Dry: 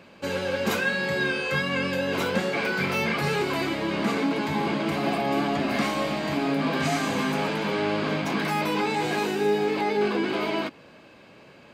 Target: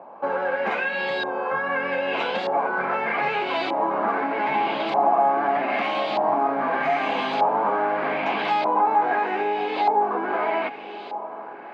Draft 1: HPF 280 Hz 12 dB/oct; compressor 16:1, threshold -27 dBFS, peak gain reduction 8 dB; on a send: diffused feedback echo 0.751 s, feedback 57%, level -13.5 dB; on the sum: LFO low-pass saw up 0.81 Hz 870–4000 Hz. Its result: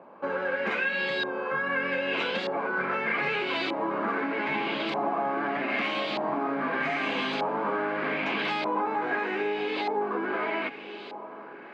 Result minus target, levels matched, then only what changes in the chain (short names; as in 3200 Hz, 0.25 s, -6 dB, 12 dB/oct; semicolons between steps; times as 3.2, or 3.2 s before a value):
1000 Hz band -4.0 dB
add after compressor: bell 770 Hz +12.5 dB 0.8 oct